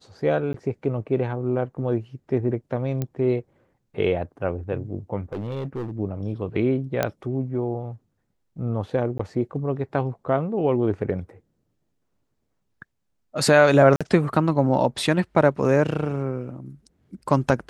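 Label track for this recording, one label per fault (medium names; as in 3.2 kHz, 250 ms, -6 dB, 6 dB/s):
0.530000	0.540000	dropout
3.020000	3.020000	pop -14 dBFS
5.330000	5.980000	clipped -25.5 dBFS
7.030000	7.030000	pop -8 dBFS
9.180000	9.190000	dropout 14 ms
13.960000	14.010000	dropout 46 ms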